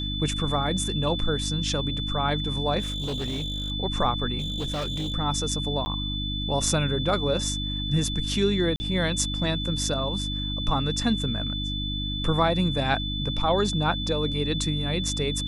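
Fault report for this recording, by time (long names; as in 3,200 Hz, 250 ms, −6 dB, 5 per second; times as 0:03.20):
mains hum 50 Hz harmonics 6 −31 dBFS
whistle 3,500 Hz −31 dBFS
0:02.79–0:03.72: clipping −26 dBFS
0:04.38–0:05.14: clipping −25.5 dBFS
0:05.85–0:05.86: drop-out 10 ms
0:08.76–0:08.80: drop-out 40 ms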